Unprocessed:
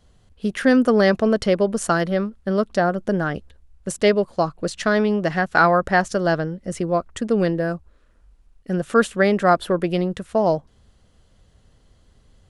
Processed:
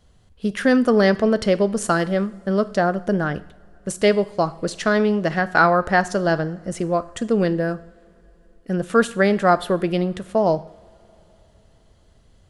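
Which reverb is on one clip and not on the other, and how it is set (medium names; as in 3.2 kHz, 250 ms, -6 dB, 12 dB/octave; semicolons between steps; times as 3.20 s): two-slope reverb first 0.58 s, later 4.2 s, from -22 dB, DRR 14 dB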